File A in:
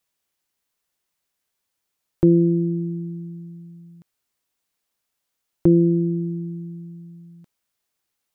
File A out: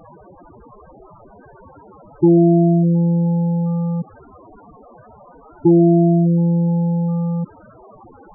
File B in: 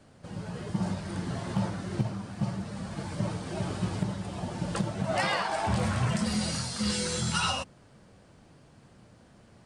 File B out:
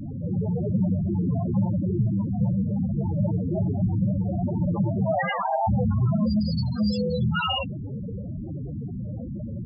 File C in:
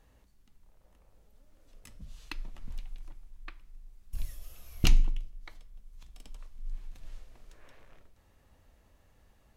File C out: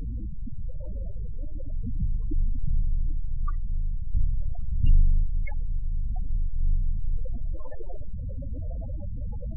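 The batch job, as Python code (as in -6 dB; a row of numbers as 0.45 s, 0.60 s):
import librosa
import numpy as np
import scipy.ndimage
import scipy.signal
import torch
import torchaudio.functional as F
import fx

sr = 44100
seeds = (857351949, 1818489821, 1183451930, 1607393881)

y = fx.env_lowpass(x, sr, base_hz=1300.0, full_db=-22.0)
y = fx.power_curve(y, sr, exponent=0.35)
y = fx.spec_topn(y, sr, count=8)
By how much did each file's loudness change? +4.5 LU, +5.5 LU, +4.0 LU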